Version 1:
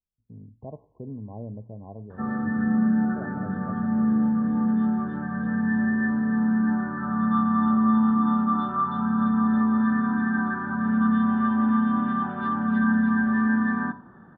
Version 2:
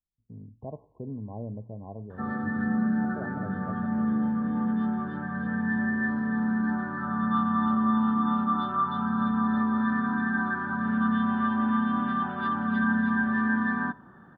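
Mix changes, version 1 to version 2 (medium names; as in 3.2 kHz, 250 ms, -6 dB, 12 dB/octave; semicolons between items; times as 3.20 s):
background: send -10.5 dB; master: remove low-pass 1.5 kHz 6 dB/octave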